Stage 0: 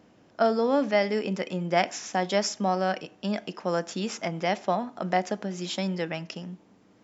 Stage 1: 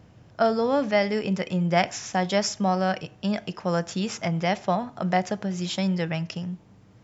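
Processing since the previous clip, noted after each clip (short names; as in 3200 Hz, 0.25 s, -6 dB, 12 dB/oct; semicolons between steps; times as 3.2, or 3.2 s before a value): resonant low shelf 170 Hz +12.5 dB, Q 1.5; gain +2 dB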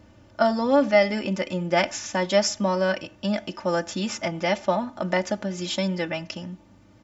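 comb 3.4 ms, depth 81%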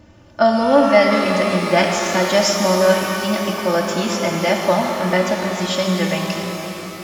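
shimmer reverb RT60 3.7 s, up +12 st, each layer -8 dB, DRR 1 dB; gain +4.5 dB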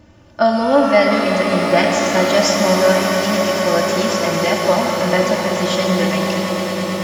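swelling echo 0.11 s, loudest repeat 8, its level -14.5 dB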